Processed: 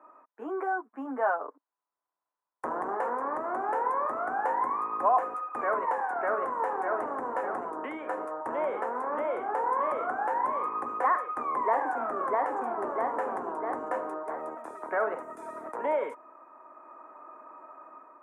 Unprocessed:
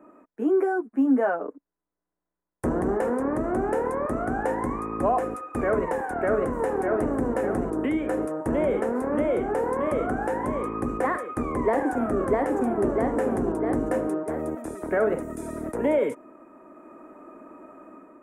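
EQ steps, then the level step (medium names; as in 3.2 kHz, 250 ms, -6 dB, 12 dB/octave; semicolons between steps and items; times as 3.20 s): resonant high-pass 1 kHz, resonance Q 2.4; tilt EQ -4 dB/octave; -2.5 dB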